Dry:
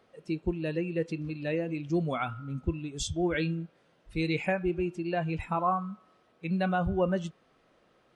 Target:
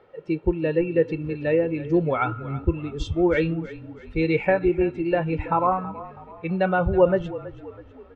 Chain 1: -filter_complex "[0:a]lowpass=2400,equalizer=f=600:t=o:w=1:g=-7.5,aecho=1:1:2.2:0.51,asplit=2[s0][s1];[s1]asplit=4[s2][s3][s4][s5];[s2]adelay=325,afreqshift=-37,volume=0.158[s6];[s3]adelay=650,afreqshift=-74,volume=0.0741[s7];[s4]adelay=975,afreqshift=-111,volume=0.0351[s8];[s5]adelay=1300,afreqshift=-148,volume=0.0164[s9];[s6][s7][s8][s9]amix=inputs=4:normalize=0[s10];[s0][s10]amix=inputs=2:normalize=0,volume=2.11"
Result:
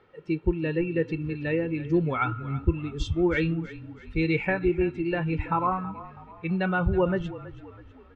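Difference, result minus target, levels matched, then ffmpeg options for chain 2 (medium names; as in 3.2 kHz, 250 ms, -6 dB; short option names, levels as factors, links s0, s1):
500 Hz band -3.0 dB
-filter_complex "[0:a]lowpass=2400,equalizer=f=600:t=o:w=1:g=3,aecho=1:1:2.2:0.51,asplit=2[s0][s1];[s1]asplit=4[s2][s3][s4][s5];[s2]adelay=325,afreqshift=-37,volume=0.158[s6];[s3]adelay=650,afreqshift=-74,volume=0.0741[s7];[s4]adelay=975,afreqshift=-111,volume=0.0351[s8];[s5]adelay=1300,afreqshift=-148,volume=0.0164[s9];[s6][s7][s8][s9]amix=inputs=4:normalize=0[s10];[s0][s10]amix=inputs=2:normalize=0,volume=2.11"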